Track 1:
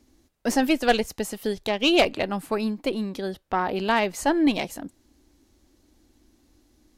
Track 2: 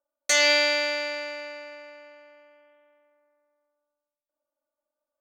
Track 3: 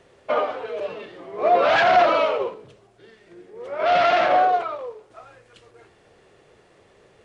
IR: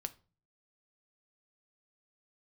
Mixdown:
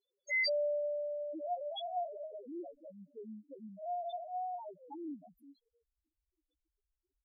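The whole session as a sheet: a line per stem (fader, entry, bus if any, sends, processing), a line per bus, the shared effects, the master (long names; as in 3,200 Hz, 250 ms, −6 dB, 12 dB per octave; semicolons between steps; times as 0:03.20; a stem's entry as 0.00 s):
−7.0 dB, 0.65 s, bus A, no send, phaser swept by the level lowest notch 180 Hz, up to 3,000 Hz, full sweep at −23 dBFS
−5.0 dB, 0.00 s, no bus, send −10.5 dB, automatic gain control gain up to 7.5 dB
−8.0 dB, 0.00 s, bus A, send −9 dB, high shelf with overshoot 2,700 Hz +12.5 dB, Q 3; expander for the loud parts 1.5 to 1, over −37 dBFS
bus A: 0.0 dB, downward compressor 2 to 1, threshold −36 dBFS, peak gain reduction 10 dB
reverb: on, RT60 0.35 s, pre-delay 6 ms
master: spectral peaks only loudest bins 1; low-shelf EQ 250 Hz −11 dB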